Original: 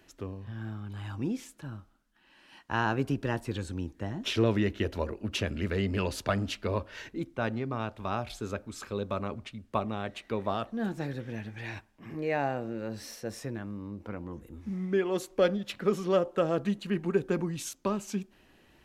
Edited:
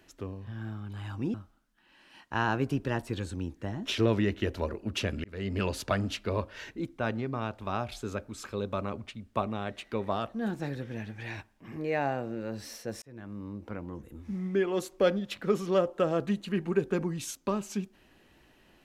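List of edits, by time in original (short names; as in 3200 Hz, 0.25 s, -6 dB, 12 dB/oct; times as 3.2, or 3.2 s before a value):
1.34–1.72 cut
5.62–5.97 fade in
13.4–13.8 fade in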